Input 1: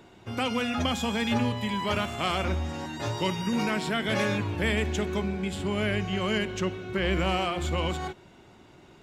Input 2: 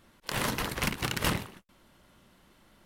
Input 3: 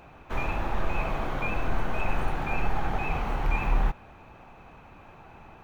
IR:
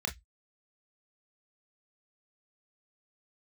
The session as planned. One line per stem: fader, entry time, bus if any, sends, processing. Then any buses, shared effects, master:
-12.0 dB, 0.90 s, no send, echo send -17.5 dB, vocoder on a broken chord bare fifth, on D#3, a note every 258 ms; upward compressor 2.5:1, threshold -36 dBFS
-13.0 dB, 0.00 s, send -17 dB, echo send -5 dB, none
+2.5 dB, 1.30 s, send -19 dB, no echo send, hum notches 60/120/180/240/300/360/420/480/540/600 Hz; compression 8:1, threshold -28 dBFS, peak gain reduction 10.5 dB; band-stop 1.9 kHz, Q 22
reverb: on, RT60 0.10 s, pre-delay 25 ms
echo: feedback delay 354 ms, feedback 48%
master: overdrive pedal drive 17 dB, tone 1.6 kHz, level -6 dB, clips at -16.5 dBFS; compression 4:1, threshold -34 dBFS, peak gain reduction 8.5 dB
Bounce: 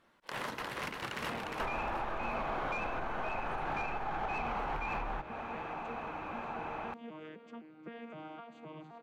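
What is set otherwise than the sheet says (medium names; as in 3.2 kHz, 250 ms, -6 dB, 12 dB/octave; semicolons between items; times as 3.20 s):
stem 1 -12.0 dB -> -21.5 dB; reverb return -8.5 dB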